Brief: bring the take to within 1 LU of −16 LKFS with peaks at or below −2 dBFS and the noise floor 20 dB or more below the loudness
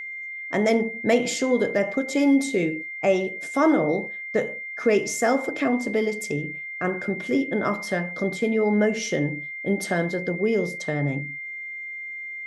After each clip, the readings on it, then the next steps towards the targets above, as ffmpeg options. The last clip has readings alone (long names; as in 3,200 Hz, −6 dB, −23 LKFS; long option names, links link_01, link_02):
interfering tone 2,100 Hz; level of the tone −32 dBFS; integrated loudness −24.5 LKFS; sample peak −8.0 dBFS; target loudness −16.0 LKFS
→ -af "bandreject=frequency=2100:width=30"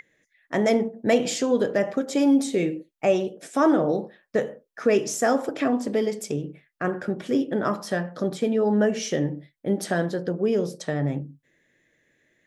interfering tone none found; integrated loudness −24.5 LKFS; sample peak −8.0 dBFS; target loudness −16.0 LKFS
→ -af "volume=8.5dB,alimiter=limit=-2dB:level=0:latency=1"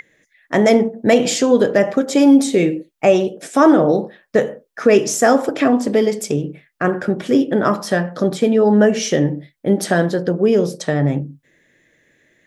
integrated loudness −16.5 LKFS; sample peak −2.0 dBFS; background noise floor −65 dBFS